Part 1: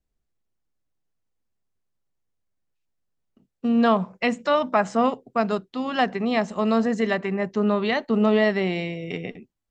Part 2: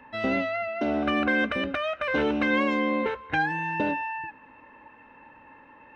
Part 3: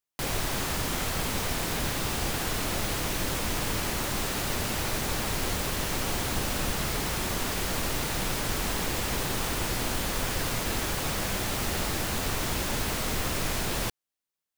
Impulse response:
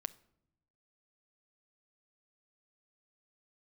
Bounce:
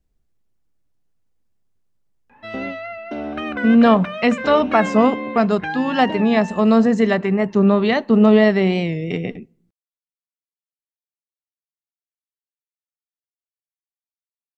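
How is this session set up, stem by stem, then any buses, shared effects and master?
+1.0 dB, 0.00 s, send -8.5 dB, bass shelf 420 Hz +6.5 dB
-3.5 dB, 2.30 s, send -10.5 dB, none
mute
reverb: on, pre-delay 6 ms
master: warped record 45 rpm, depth 100 cents

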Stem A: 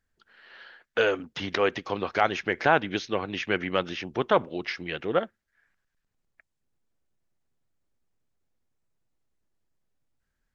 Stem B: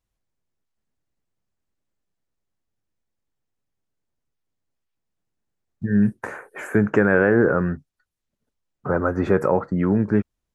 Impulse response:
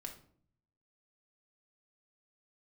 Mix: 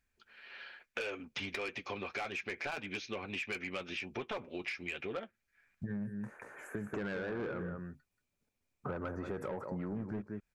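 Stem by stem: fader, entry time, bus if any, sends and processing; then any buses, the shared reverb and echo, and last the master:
-2.5 dB, 0.00 s, no send, no echo send, peaking EQ 2.4 kHz +15 dB 0.2 oct; hard clipper -8.5 dBFS, distortion -23 dB; comb of notches 160 Hz
-3.5 dB, 0.00 s, no send, echo send -10.5 dB, random flutter of the level, depth 55%; auto duck -14 dB, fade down 0.45 s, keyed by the first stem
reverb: none
echo: delay 181 ms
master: treble shelf 4.5 kHz +3.5 dB; saturation -21.5 dBFS, distortion -10 dB; compression, threshold -37 dBFS, peak gain reduction 12 dB

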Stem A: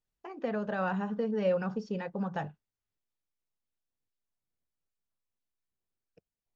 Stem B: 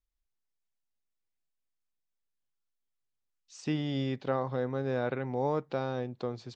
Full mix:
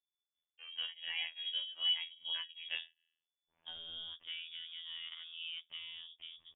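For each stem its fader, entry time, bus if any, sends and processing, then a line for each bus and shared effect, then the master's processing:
+0.5 dB, 0.35 s, no send, chorus 1.5 Hz, delay 16.5 ms, depth 2.6 ms; de-hum 64.67 Hz, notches 29; tremolo of two beating tones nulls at 2.5 Hz
-12.5 dB, 0.00 s, no send, none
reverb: none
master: frequency inversion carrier 3.5 kHz; robot voice 82.6 Hz

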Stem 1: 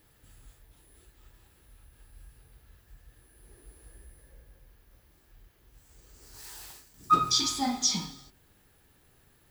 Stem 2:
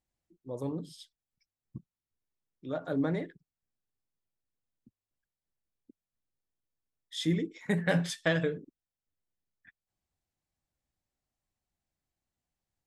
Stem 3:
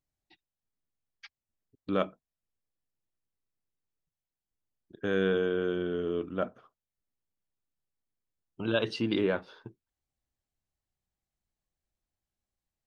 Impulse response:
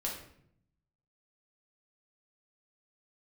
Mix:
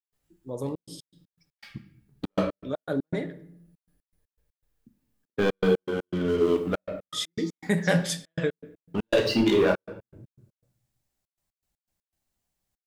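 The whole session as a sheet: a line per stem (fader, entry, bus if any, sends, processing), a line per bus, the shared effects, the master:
-15.0 dB, 0.00 s, send -5.5 dB, feedback comb 150 Hz, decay 0.23 s, harmonics all, mix 80%
+2.0 dB, 0.00 s, send -9.5 dB, treble shelf 6.3 kHz +7.5 dB
0.0 dB, 0.35 s, send -4.5 dB, reverb removal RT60 1.3 s; waveshaping leveller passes 3; auto duck -11 dB, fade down 0.65 s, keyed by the second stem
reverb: on, RT60 0.65 s, pre-delay 5 ms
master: trance gate ".xxxxx.x.x.x" 120 bpm -60 dB

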